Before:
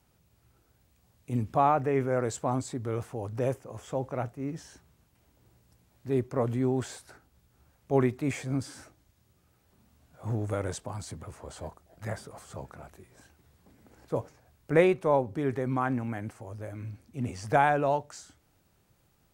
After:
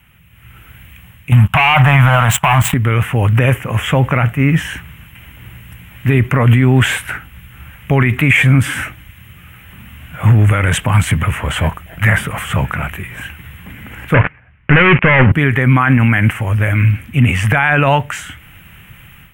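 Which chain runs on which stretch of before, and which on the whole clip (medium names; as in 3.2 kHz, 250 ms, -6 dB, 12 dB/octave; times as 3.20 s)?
1.32–2.74 s: FFT filter 200 Hz 0 dB, 380 Hz -29 dB, 680 Hz +8 dB, 1 kHz +10 dB, 2 kHz -10 dB, 3.2 kHz 0 dB + waveshaping leveller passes 3
14.14–15.32 s: waveshaping leveller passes 5 + low-pass 2.5 kHz 24 dB/octave
whole clip: FFT filter 170 Hz 0 dB, 370 Hz -12 dB, 710 Hz -10 dB, 2 kHz +9 dB, 3 kHz +9 dB, 4.5 kHz -22 dB, 12 kHz 0 dB; level rider gain up to 10.5 dB; loudness maximiser +18.5 dB; trim -1 dB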